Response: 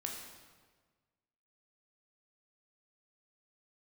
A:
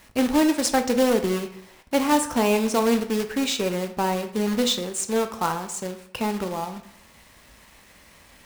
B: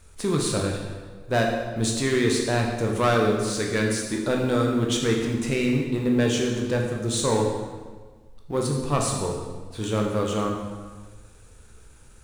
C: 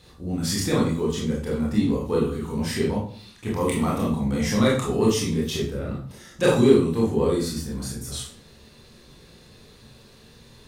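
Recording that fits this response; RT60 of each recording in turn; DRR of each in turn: B; 0.70 s, 1.5 s, 0.45 s; 7.0 dB, 0.0 dB, -4.5 dB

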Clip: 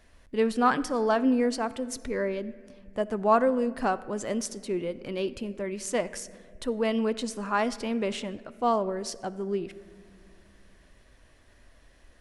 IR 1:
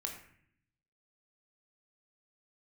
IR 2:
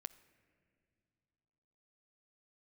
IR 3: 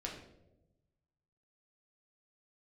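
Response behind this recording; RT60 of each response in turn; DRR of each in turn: 2; 0.60 s, no single decay rate, 1.0 s; 1.5 dB, 14.0 dB, -2.0 dB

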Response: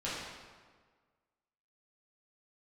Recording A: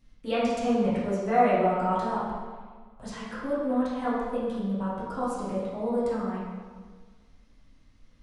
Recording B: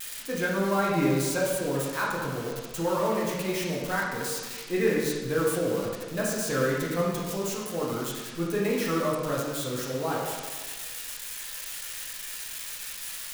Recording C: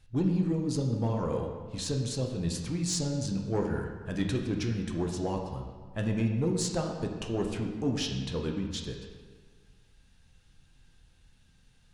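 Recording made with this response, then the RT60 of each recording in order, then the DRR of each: A; 1.6 s, 1.6 s, 1.6 s; -10.0 dB, -5.0 dB, 2.0 dB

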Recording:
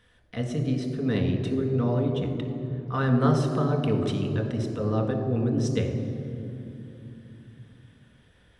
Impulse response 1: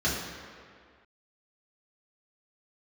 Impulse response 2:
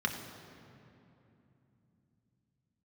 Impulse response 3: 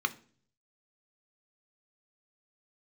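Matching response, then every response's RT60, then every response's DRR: 2; 2.0 s, 2.9 s, 0.45 s; -7.5 dB, 2.5 dB, 8.0 dB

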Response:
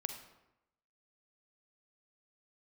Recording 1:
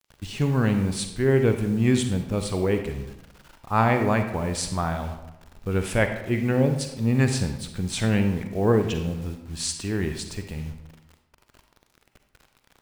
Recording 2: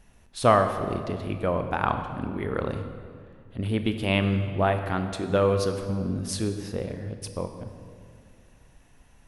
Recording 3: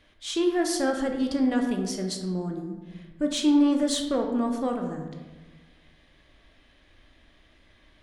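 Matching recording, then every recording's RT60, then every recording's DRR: 1; 0.90 s, 2.2 s, 1.3 s; 6.5 dB, 7.0 dB, 3.0 dB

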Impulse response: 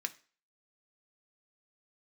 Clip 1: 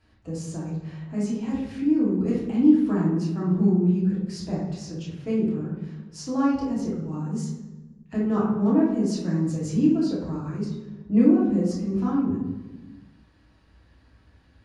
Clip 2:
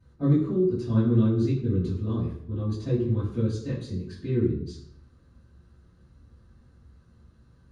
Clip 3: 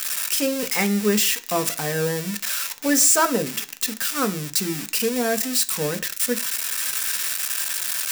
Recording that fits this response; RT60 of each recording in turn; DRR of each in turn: 3; 1.2 s, 0.70 s, 0.40 s; -6.5 dB, -14.0 dB, 6.5 dB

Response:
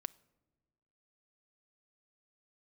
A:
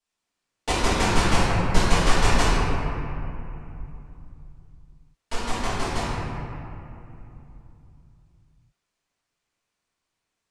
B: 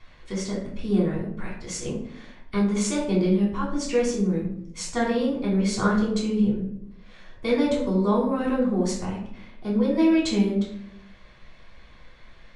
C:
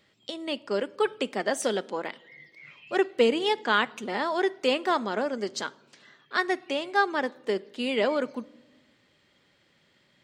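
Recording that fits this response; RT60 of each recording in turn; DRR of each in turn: C; 2.9 s, 0.75 s, no single decay rate; -13.0 dB, -6.0 dB, 14.5 dB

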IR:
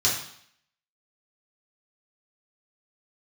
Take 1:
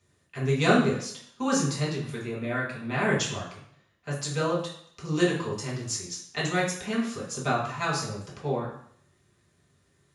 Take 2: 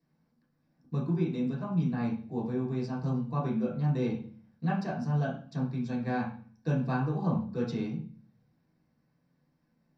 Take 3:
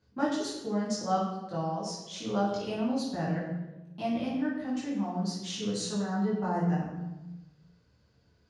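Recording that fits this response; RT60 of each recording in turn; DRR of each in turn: 1; 0.65 s, 0.45 s, 1.1 s; -6.0 dB, -7.0 dB, -7.0 dB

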